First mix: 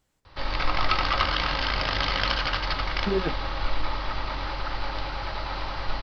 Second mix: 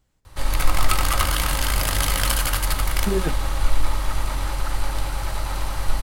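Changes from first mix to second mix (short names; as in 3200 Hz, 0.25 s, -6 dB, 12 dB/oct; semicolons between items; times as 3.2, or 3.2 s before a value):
background: remove steep low-pass 5200 Hz 72 dB/oct; master: add low shelf 160 Hz +9.5 dB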